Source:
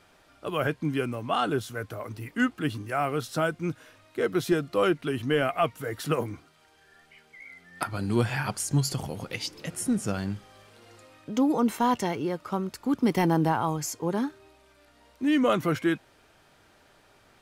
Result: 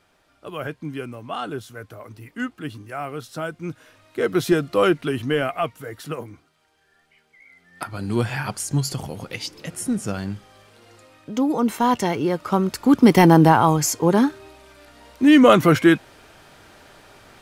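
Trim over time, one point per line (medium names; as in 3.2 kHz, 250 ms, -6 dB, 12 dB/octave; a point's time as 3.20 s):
3.39 s -3 dB
4.39 s +6 dB
4.99 s +6 dB
6.25 s -4.5 dB
7.46 s -4.5 dB
8.13 s +2.5 dB
11.48 s +2.5 dB
12.78 s +11 dB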